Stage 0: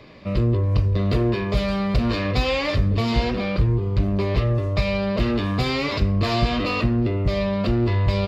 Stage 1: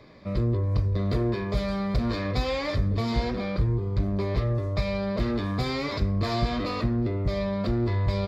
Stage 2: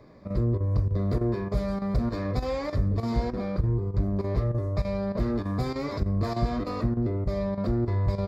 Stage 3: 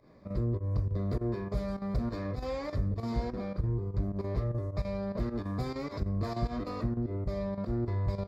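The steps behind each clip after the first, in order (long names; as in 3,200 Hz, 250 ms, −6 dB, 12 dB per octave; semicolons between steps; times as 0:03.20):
parametric band 2,800 Hz −14.5 dB 0.23 octaves; level −5 dB
parametric band 3,100 Hz −13 dB 1.4 octaves; square-wave tremolo 3.3 Hz, depth 65%, duty 90%
fake sidechain pumping 102 BPM, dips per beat 1, −13 dB, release 94 ms; level −5.5 dB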